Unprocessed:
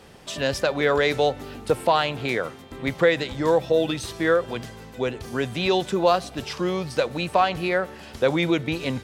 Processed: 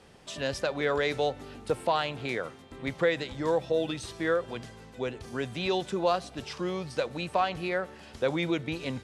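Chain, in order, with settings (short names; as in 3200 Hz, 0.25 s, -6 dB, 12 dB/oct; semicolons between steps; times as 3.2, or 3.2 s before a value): LPF 11000 Hz 24 dB/oct; gain -7 dB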